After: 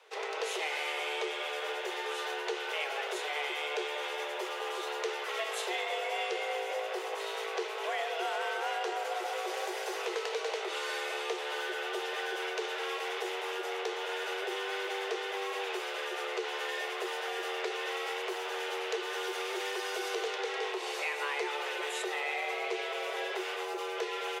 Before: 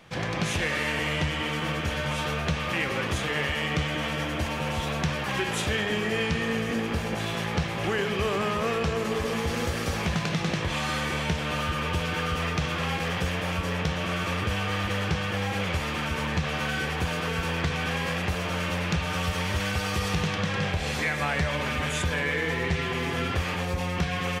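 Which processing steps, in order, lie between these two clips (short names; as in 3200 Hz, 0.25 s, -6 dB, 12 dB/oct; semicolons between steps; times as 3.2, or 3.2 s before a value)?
HPF 90 Hz 12 dB/oct; frequency shift +290 Hz; gain -7 dB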